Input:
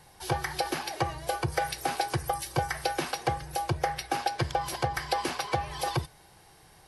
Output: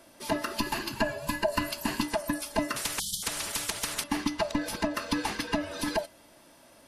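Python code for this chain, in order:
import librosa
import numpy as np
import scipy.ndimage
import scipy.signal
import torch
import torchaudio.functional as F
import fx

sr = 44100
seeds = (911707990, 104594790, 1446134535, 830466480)

y = fx.band_swap(x, sr, width_hz=500)
y = fx.spec_erase(y, sr, start_s=2.99, length_s=0.24, low_hz=210.0, high_hz=3000.0)
y = fx.ripple_eq(y, sr, per_octave=1.4, db=8, at=(0.57, 2.03))
y = fx.spectral_comp(y, sr, ratio=10.0, at=(2.76, 4.04))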